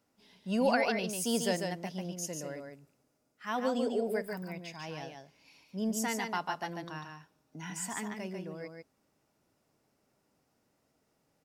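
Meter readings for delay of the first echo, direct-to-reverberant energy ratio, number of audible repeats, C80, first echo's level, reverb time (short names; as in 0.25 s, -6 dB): 0.145 s, none, 1, none, -5.0 dB, none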